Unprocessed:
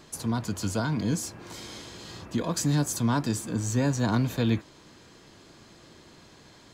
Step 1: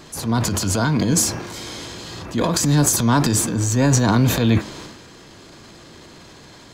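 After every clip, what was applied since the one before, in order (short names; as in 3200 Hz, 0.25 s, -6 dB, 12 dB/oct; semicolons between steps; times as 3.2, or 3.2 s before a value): transient shaper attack -6 dB, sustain +9 dB; de-hum 211.4 Hz, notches 31; gain +9 dB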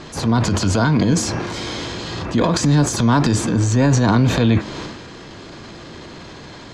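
compressor 2:1, threshold -23 dBFS, peak gain reduction 7 dB; air absorption 94 m; gain +7.5 dB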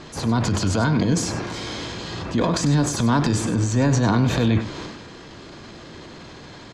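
echo 98 ms -12 dB; gain -4 dB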